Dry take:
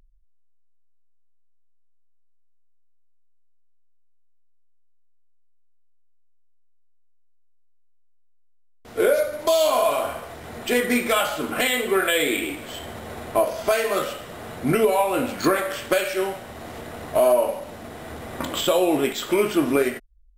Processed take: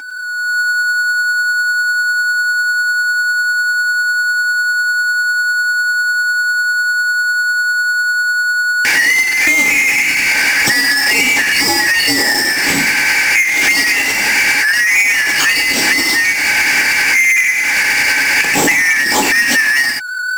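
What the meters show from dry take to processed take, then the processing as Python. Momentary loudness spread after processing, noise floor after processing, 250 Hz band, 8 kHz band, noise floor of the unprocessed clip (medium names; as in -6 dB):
4 LU, -16 dBFS, +2.0 dB, +17.5 dB, -55 dBFS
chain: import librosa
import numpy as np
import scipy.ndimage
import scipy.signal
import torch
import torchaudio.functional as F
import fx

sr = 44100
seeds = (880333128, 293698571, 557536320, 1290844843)

y = fx.band_shuffle(x, sr, order='3142')
y = fx.recorder_agc(y, sr, target_db=-11.5, rise_db_per_s=51.0, max_gain_db=30)
y = scipy.signal.sosfilt(scipy.signal.butter(2, 130.0, 'highpass', fs=sr, output='sos'), y)
y = fx.low_shelf(y, sr, hz=270.0, db=-6.0)
y = fx.small_body(y, sr, hz=(280.0, 840.0, 2300.0), ring_ms=45, db=13)
y = fx.power_curve(y, sr, exponent=0.5)
y = y * (1.0 - 0.34 / 2.0 + 0.34 / 2.0 * np.cos(2.0 * np.pi * 10.0 * (np.arange(len(y)) / sr)))
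y = fx.peak_eq(y, sr, hz=7200.0, db=3.5, octaves=0.58)
y = fx.pre_swell(y, sr, db_per_s=30.0)
y = y * librosa.db_to_amplitude(-1.0)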